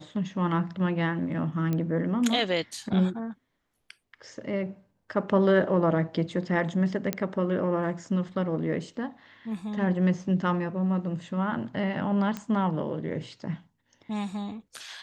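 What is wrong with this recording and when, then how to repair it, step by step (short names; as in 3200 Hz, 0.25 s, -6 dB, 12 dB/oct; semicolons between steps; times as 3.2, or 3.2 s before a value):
1.73 pop -17 dBFS
7.13 pop -11 dBFS
12.37 pop -19 dBFS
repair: de-click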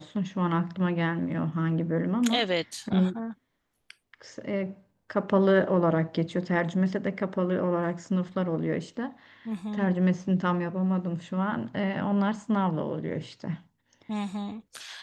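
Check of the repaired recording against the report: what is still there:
none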